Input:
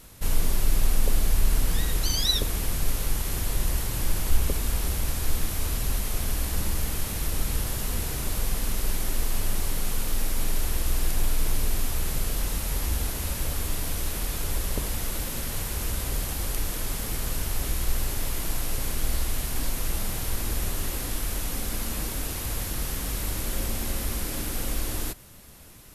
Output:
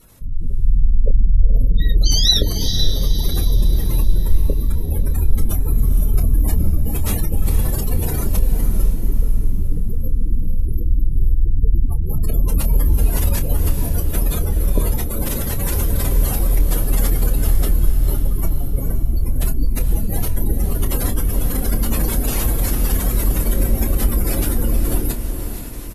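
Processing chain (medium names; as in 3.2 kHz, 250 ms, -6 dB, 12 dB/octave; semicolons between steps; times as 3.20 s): spectral gate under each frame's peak -25 dB strong; level rider gain up to 11.5 dB; doubling 27 ms -10 dB; on a send: echo that smears into a reverb 483 ms, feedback 41%, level -7 dB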